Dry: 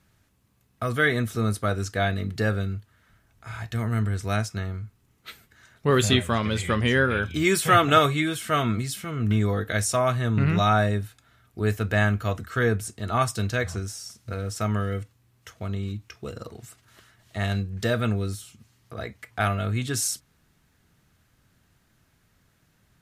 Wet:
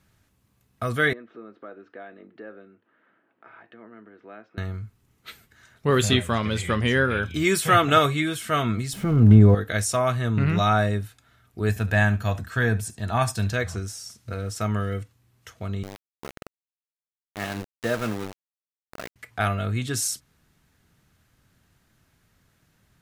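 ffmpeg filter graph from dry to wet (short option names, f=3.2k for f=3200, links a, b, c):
-filter_complex "[0:a]asettb=1/sr,asplit=3[a][b][c];[a]atrim=end=1.134[d];[b]atrim=start=1.13:end=4.58,asetpts=PTS-STARTPTS,afade=t=in:d=0.004:c=qsin,afade=t=out:st=3.446:d=0.004:c=qsin,acompressor=threshold=-45dB:ratio=2.5:attack=3.2:release=140:knee=1:detection=peak,highpass=f=240:w=0.5412,highpass=f=240:w=1.3066,equalizer=f=330:t=q:w=4:g=7,equalizer=f=530:t=q:w=4:g=4,equalizer=f=2.2k:t=q:w=4:g=-4,lowpass=f=2.5k:w=0.5412,lowpass=f=2.5k:w=1.3066[e];[c]atrim=start=4.576[f];[d][e]acrossfade=d=0.004:c1=hsin:c2=qsin[g];[g][f]acrossfade=d=0.004:c1=qsin:c2=hsin,asettb=1/sr,asplit=3[h][i][j];[h]atrim=end=8.934[k];[i]atrim=start=8.93:end=9.55,asetpts=PTS-STARTPTS,afade=t=in:d=0.004:c=qsin,afade=t=out:st=0.616:d=0.004:c=qsin,aeval=exprs='val(0)+0.5*0.0188*sgn(val(0))':c=same,tiltshelf=f=1.1k:g=10[l];[j]atrim=start=9.546[m];[k][l]acrossfade=d=0.004:c1=hsin:c2=qsin[n];[n][m]acrossfade=d=0.004:c1=qsin:c2=hsin,asettb=1/sr,asplit=3[o][p][q];[o]atrim=end=11.694[r];[p]atrim=start=11.69:end=13.53,asetpts=PTS-STARTPTS,afade=t=in:d=0.004:c=qsin,afade=t=out:st=1.836:d=0.004:c=qsin,aecho=1:1:1.2:0.42,atrim=end_sample=81144,aecho=1:1:71:0.126,atrim=end_sample=81144[s];[q]atrim=start=13.526[t];[r][s]acrossfade=d=0.004:c1=hsin:c2=qsin[u];[u][t]acrossfade=d=0.004:c1=qsin:c2=hsin,asettb=1/sr,asplit=3[v][w][x];[v]atrim=end=15.834[y];[w]atrim=start=15.83:end=19.16,asetpts=PTS-STARTPTS,afade=t=in:d=0.004:c=qsin,afade=t=out:st=3.326:d=0.004:c=qsin,highpass=170,lowpass=2.6k,aeval=exprs='val(0)*gte(abs(val(0)),0.0316)':c=same[z];[x]atrim=start=19.156[aa];[y][z]acrossfade=d=0.004:c1=hsin:c2=qsin[ab];[ab][aa]acrossfade=d=0.004:c1=qsin:c2=hsin"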